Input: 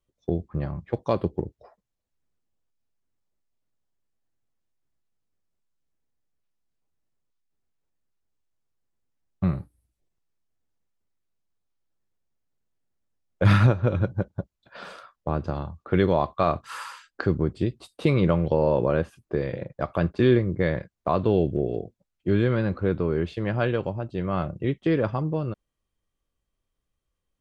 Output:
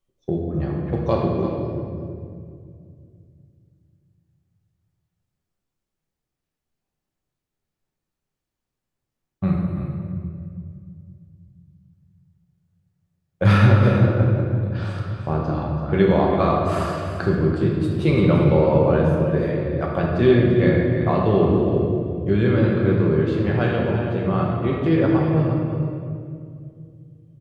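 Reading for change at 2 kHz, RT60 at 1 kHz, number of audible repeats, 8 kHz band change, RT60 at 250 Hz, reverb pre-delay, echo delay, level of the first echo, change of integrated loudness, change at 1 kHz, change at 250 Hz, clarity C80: +4.5 dB, 2.0 s, 1, can't be measured, 3.2 s, 5 ms, 337 ms, −10.5 dB, +5.5 dB, +4.5 dB, +6.5 dB, 1.5 dB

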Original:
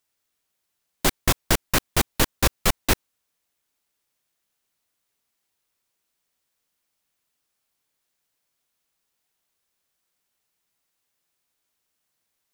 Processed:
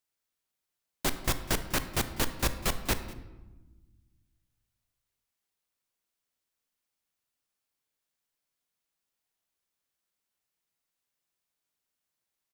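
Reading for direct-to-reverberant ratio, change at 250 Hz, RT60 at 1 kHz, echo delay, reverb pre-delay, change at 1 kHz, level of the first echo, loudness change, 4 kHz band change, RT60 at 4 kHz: 9.5 dB, −7.5 dB, 1.1 s, 198 ms, 20 ms, −8.0 dB, −21.0 dB, −8.0 dB, −8.0 dB, 0.65 s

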